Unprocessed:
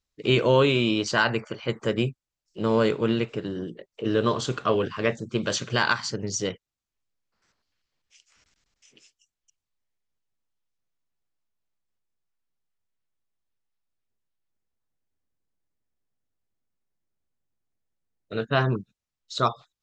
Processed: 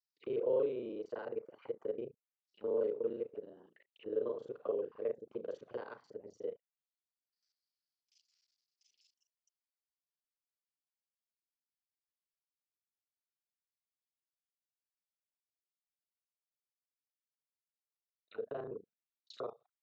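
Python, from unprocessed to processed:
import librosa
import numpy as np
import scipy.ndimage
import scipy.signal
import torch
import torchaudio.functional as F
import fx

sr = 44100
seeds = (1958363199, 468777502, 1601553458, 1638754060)

y = fx.local_reverse(x, sr, ms=33.0)
y = fx.auto_wah(y, sr, base_hz=470.0, top_hz=4900.0, q=5.0, full_db=-25.5, direction='down')
y = y * 10.0 ** (-6.5 / 20.0)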